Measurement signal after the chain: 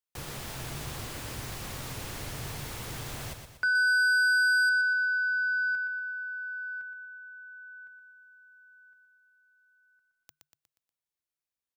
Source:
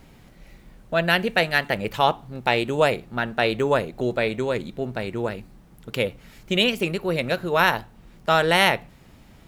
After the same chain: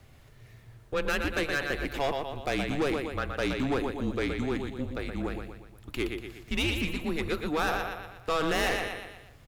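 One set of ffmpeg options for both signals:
-af "aecho=1:1:120|240|360|480|600:0.422|0.198|0.0932|0.0438|0.0206,asoftclip=type=tanh:threshold=-17dB,afreqshift=-150,volume=-5dB"

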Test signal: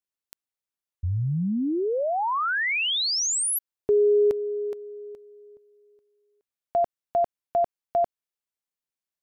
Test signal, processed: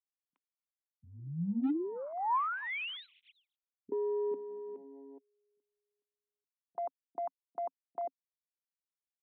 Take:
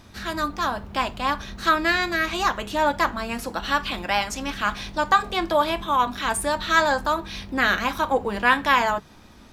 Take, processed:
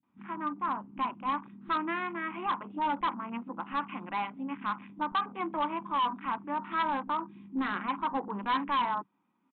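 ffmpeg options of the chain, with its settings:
-filter_complex "[0:a]afwtdn=0.0282,highpass=f=170:w=0.5412,highpass=f=170:w=1.3066,equalizer=f=180:t=q:w=4:g=5,equalizer=f=270:t=q:w=4:g=8,equalizer=f=450:t=q:w=4:g=-7,equalizer=f=630:t=q:w=4:g=-10,equalizer=f=1k:t=q:w=4:g=7,equalizer=f=1.7k:t=q:w=4:g=-9,lowpass=f=2.5k:w=0.5412,lowpass=f=2.5k:w=1.3066,aresample=8000,volume=16.5dB,asoftclip=hard,volume=-16.5dB,aresample=44100,acrossover=split=220[a][b];[b]adelay=30[c];[a][c]amix=inputs=2:normalize=0,volume=-8dB"

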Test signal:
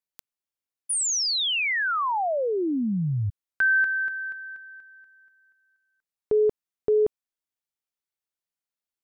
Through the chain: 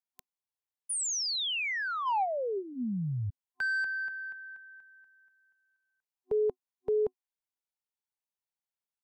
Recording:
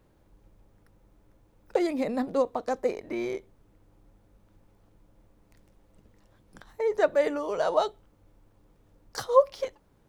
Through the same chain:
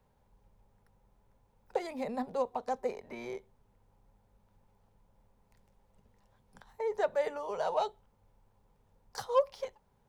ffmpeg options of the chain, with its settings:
-filter_complex "[0:a]superequalizer=6b=0.282:9b=2,acrossover=split=340|780|2200[a][b][c][d];[c]asoftclip=type=tanh:threshold=-24dB[e];[a][b][e][d]amix=inputs=4:normalize=0,volume=-7dB"

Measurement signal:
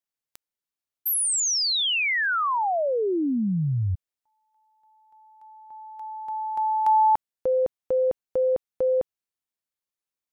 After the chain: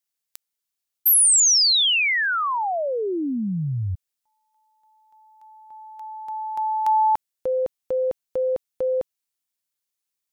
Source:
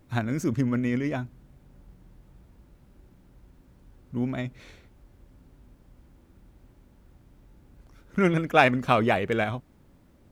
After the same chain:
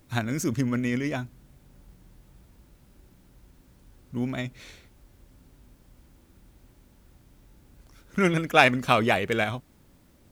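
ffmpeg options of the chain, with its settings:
-af "highshelf=f=2.6k:g=10,volume=-1dB"

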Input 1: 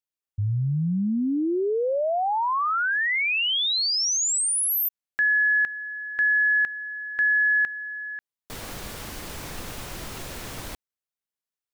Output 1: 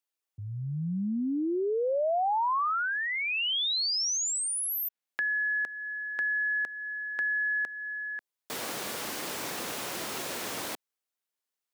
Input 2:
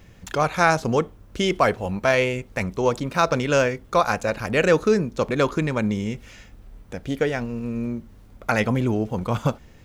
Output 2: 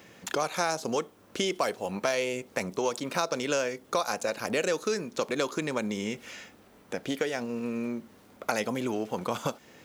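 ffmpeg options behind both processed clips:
-filter_complex "[0:a]highpass=270,acrossover=split=1000|3800[a][b][c];[a]acompressor=threshold=-32dB:ratio=4[d];[b]acompressor=threshold=-41dB:ratio=4[e];[c]acompressor=threshold=-36dB:ratio=4[f];[d][e][f]amix=inputs=3:normalize=0,volume=3dB"

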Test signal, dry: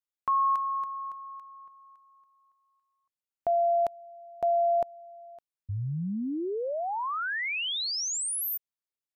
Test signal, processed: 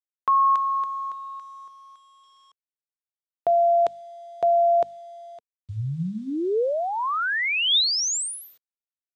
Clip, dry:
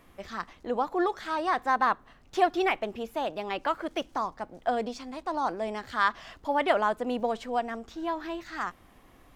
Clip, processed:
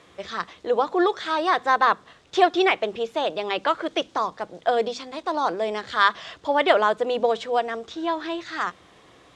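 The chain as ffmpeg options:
-af "bandreject=f=50:t=h:w=6,bandreject=f=100:t=h:w=6,bandreject=f=150:t=h:w=6,bandreject=f=200:t=h:w=6,bandreject=f=250:t=h:w=6,acrusher=bits=10:mix=0:aa=0.000001,highpass=110,equalizer=f=240:t=q:w=4:g=-9,equalizer=f=460:t=q:w=4:g=4,equalizer=f=820:t=q:w=4:g=-3,equalizer=f=3.6k:t=q:w=4:g=7,lowpass=f=8.1k:w=0.5412,lowpass=f=8.1k:w=1.3066,volume=6.5dB"

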